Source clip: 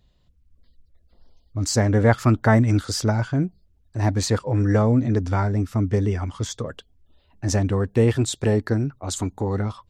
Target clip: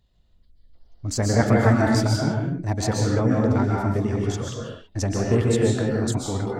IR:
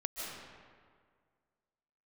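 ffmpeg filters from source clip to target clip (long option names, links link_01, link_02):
-filter_complex "[0:a]bandreject=frequency=69.64:width_type=h:width=4,bandreject=frequency=139.28:width_type=h:width=4,bandreject=frequency=208.92:width_type=h:width=4,bandreject=frequency=278.56:width_type=h:width=4,bandreject=frequency=348.2:width_type=h:width=4,bandreject=frequency=417.84:width_type=h:width=4,bandreject=frequency=487.48:width_type=h:width=4,bandreject=frequency=557.12:width_type=h:width=4,bandreject=frequency=626.76:width_type=h:width=4,bandreject=frequency=696.4:width_type=h:width=4,bandreject=frequency=766.04:width_type=h:width=4,bandreject=frequency=835.68:width_type=h:width=4,atempo=1.5[link_01];[1:a]atrim=start_sample=2205,afade=type=out:start_time=0.42:duration=0.01,atrim=end_sample=18963,asetrate=48510,aresample=44100[link_02];[link_01][link_02]afir=irnorm=-1:irlink=0"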